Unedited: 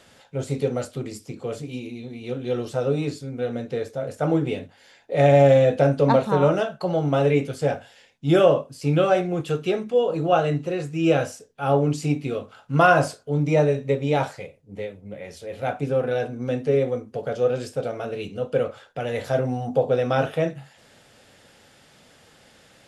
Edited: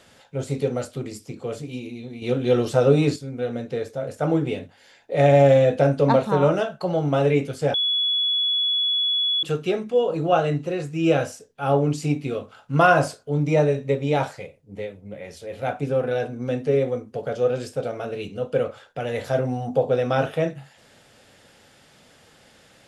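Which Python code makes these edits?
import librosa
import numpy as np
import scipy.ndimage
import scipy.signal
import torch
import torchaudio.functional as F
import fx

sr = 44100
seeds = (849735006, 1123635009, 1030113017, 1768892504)

y = fx.edit(x, sr, fx.clip_gain(start_s=2.22, length_s=0.94, db=6.5),
    fx.bleep(start_s=7.74, length_s=1.69, hz=3390.0, db=-19.0), tone=tone)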